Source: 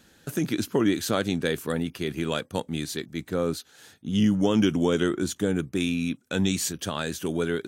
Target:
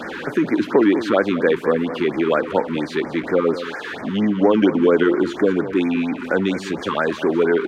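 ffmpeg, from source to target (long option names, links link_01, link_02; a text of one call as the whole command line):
ffmpeg -i in.wav -filter_complex "[0:a]aeval=exprs='val(0)+0.5*0.0266*sgn(val(0))':channel_layout=same,aemphasis=mode=reproduction:type=50fm,asplit=2[link_01][link_02];[link_02]acompressor=threshold=-29dB:ratio=6,volume=-1dB[link_03];[link_01][link_03]amix=inputs=2:normalize=0,acrossover=split=260 2900:gain=0.0891 1 0.0891[link_04][link_05][link_06];[link_04][link_05][link_06]amix=inputs=3:normalize=0,asplit=2[link_07][link_08];[link_08]aecho=0:1:201:0.237[link_09];[link_07][link_09]amix=inputs=2:normalize=0,afftfilt=real='re*(1-between(b*sr/1024,590*pow(3500/590,0.5+0.5*sin(2*PI*4.3*pts/sr))/1.41,590*pow(3500/590,0.5+0.5*sin(2*PI*4.3*pts/sr))*1.41))':imag='im*(1-between(b*sr/1024,590*pow(3500/590,0.5+0.5*sin(2*PI*4.3*pts/sr))/1.41,590*pow(3500/590,0.5+0.5*sin(2*PI*4.3*pts/sr))*1.41))':win_size=1024:overlap=0.75,volume=7.5dB" out.wav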